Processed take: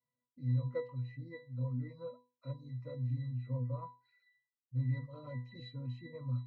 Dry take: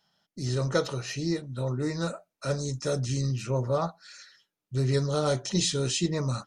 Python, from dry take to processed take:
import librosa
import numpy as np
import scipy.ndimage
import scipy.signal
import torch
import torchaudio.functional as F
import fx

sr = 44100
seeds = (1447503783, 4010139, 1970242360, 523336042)

y = fx.dereverb_blind(x, sr, rt60_s=0.74)
y = fx.high_shelf_res(y, sr, hz=3800.0, db=-11.5, q=1.5)
y = fx.octave_resonator(y, sr, note='B', decay_s=0.32)
y = F.gain(torch.from_numpy(y), 2.0).numpy()